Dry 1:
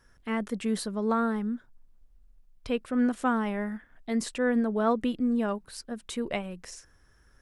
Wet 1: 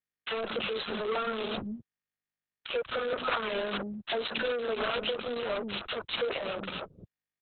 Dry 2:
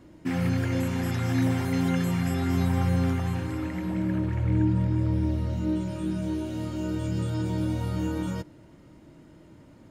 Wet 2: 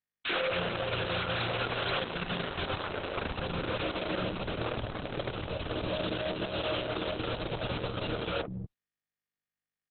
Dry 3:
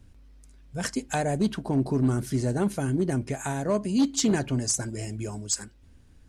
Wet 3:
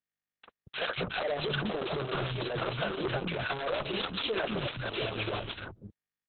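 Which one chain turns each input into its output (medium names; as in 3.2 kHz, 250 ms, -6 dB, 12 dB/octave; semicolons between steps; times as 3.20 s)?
send-on-delta sampling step -38 dBFS; treble shelf 4.3 kHz +2.5 dB; three bands offset in time highs, mids, lows 40/230 ms, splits 250/1400 Hz; integer overflow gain 19 dB; static phaser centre 1.3 kHz, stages 8; compression 4:1, threshold -36 dBFS; high-pass 81 Hz 12 dB/octave; overdrive pedal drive 28 dB, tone 4.5 kHz, clips at -22.5 dBFS; upward compressor, threshold -40 dBFS; Opus 6 kbps 48 kHz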